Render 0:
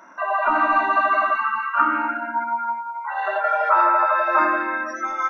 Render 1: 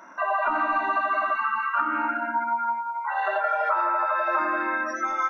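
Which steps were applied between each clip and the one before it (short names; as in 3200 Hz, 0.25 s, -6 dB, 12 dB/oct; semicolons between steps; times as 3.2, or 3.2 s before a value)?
compressor, threshold -21 dBFS, peak gain reduction 8.5 dB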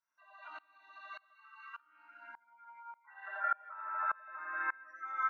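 band-pass sweep 4400 Hz -> 1600 Hz, 2.12–3.41; dB-ramp tremolo swelling 1.7 Hz, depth 28 dB; gain -2 dB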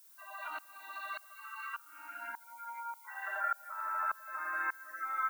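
compressor 2:1, threshold -53 dBFS, peak gain reduction 14 dB; added noise violet -71 dBFS; gain +11.5 dB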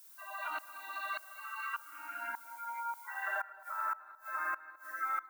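flipped gate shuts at -28 dBFS, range -24 dB; tape echo 0.216 s, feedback 64%, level -16 dB, low-pass 1500 Hz; gain +3 dB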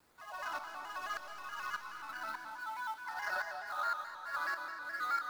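median filter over 15 samples; digital reverb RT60 2.9 s, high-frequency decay 0.85×, pre-delay 60 ms, DRR 3.5 dB; shaped vibrato square 4.7 Hz, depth 100 cents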